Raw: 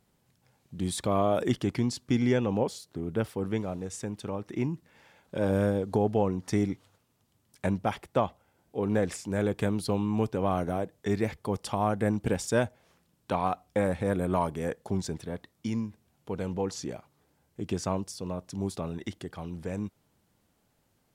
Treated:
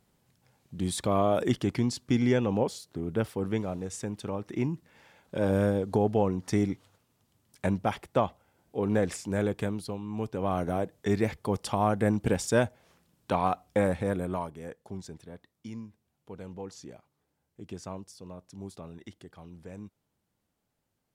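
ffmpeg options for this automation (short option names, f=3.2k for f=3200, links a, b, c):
-af "volume=12dB,afade=t=out:st=9.35:d=0.66:silence=0.298538,afade=t=in:st=10.01:d=0.81:silence=0.266073,afade=t=out:st=13.83:d=0.69:silence=0.281838"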